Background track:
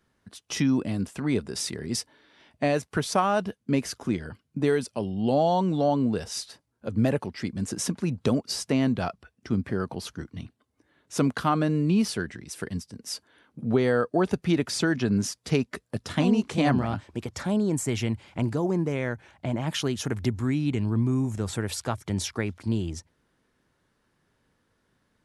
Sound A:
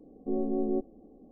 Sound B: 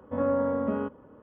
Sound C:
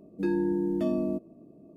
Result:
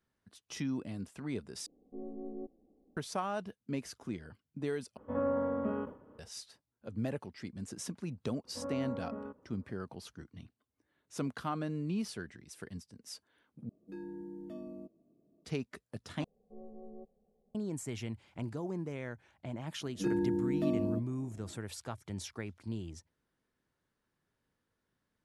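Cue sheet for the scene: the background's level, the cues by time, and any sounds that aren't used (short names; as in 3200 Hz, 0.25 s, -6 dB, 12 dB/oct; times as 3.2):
background track -12.5 dB
1.66 replace with A -14 dB
4.97 replace with B -6 dB + sustainer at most 140 dB/s
8.44 add B -13.5 dB + LPF 2100 Hz
13.69 replace with C -17.5 dB
16.24 replace with A -15.5 dB + Chebyshev band-stop 210–420 Hz
19.81 add C -4.5 dB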